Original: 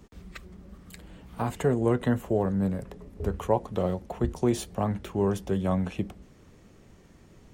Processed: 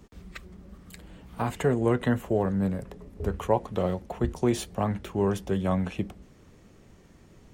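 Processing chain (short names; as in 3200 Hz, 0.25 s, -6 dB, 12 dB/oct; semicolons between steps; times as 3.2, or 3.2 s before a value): dynamic EQ 2200 Hz, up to +4 dB, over -43 dBFS, Q 0.78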